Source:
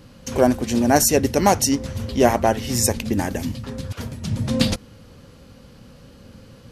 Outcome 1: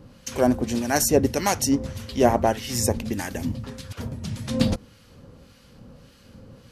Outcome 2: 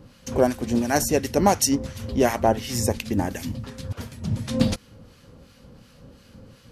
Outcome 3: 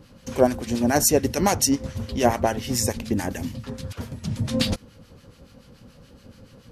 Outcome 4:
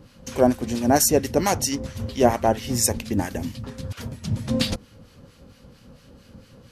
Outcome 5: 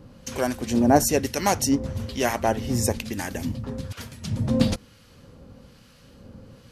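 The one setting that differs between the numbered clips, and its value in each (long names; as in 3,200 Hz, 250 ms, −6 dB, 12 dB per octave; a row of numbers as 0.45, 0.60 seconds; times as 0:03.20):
two-band tremolo in antiphase, speed: 1.7, 2.8, 7, 4.4, 1.1 Hertz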